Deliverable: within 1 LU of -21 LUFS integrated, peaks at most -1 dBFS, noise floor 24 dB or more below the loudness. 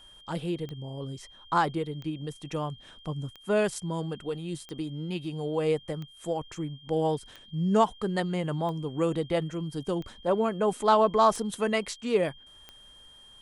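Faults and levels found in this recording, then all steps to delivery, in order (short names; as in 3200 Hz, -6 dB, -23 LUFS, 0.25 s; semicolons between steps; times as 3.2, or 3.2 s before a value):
clicks 10; steady tone 3200 Hz; tone level -51 dBFS; loudness -29.5 LUFS; peak -11.0 dBFS; loudness target -21.0 LUFS
-> de-click; notch 3200 Hz, Q 30; gain +8.5 dB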